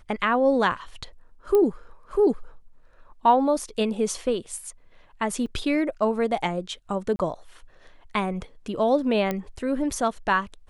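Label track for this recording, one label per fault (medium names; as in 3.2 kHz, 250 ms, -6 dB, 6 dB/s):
1.550000	1.550000	pop -12 dBFS
5.460000	5.470000	dropout 5.1 ms
7.160000	7.190000	dropout 31 ms
9.310000	9.310000	pop -13 dBFS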